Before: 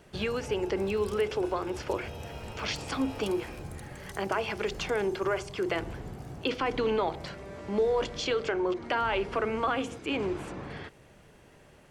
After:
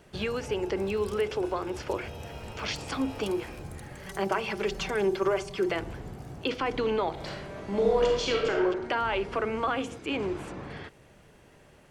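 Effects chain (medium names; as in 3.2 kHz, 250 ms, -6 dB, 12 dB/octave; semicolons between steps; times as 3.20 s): 4.06–5.72 s: comb 5.2 ms, depth 61%; 7.12–8.63 s: reverb throw, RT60 1 s, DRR -0.5 dB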